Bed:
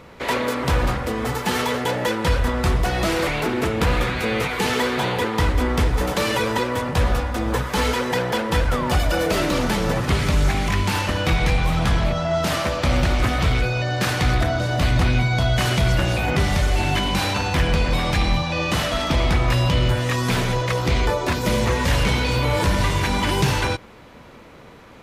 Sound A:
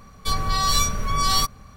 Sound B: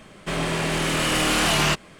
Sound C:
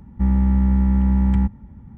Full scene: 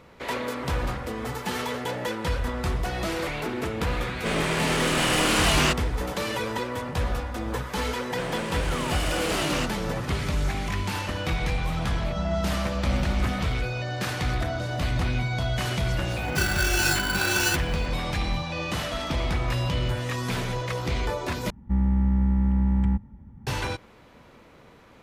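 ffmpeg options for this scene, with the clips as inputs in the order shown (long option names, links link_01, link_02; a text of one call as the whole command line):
ffmpeg -i bed.wav -i cue0.wav -i cue1.wav -i cue2.wav -filter_complex "[2:a]asplit=2[link_01][link_02];[3:a]asplit=2[link_03][link_04];[0:a]volume=-7.5dB[link_05];[1:a]aeval=exprs='val(0)*sgn(sin(2*PI*1500*n/s))':channel_layout=same[link_06];[link_05]asplit=2[link_07][link_08];[link_07]atrim=end=21.504[link_09];[link_04]atrim=end=1.97,asetpts=PTS-STARTPTS,volume=-5dB[link_10];[link_08]atrim=start=23.466[link_11];[link_01]atrim=end=1.99,asetpts=PTS-STARTPTS,volume=-1.5dB,afade=type=in:duration=0.004:curve=hsin,afade=type=out:start_time=1.986:duration=0.004:curve=hsin,adelay=3980[link_12];[link_02]atrim=end=1.99,asetpts=PTS-STARTPTS,volume=-9dB,afade=type=in:duration=0.004:curve=hsin,afade=type=out:start_time=1.986:duration=0.004:curve=hsin,adelay=7910[link_13];[link_03]atrim=end=1.97,asetpts=PTS-STARTPTS,volume=-12.5dB,afade=type=in:duration=0.004:curve=hsin,afade=type=out:start_time=1.966:duration=0.004:curve=hsin,adelay=11960[link_14];[link_06]atrim=end=1.76,asetpts=PTS-STARTPTS,volume=-5.5dB,afade=type=in:duration=0.004:curve=hsin,afade=type=out:start_time=1.756:duration=0.004:curve=hsin,adelay=16100[link_15];[link_09][link_10]acrossfade=duration=0.004:curve1=hsin:curve2=hsin[link_16];[link_16][link_11]acrossfade=duration=0.004:curve1=hsin:curve2=hsin[link_17];[link_17][link_12][link_13][link_14][link_15]amix=inputs=5:normalize=0" out.wav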